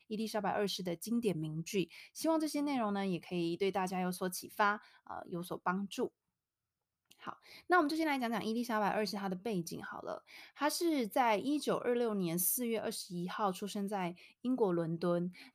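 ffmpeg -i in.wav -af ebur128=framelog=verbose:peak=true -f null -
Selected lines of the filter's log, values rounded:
Integrated loudness:
  I:         -35.7 LUFS
  Threshold: -46.0 LUFS
Loudness range:
  LRA:         3.9 LU
  Threshold: -56.2 LUFS
  LRA low:   -38.3 LUFS
  LRA high:  -34.5 LUFS
True peak:
  Peak:      -18.1 dBFS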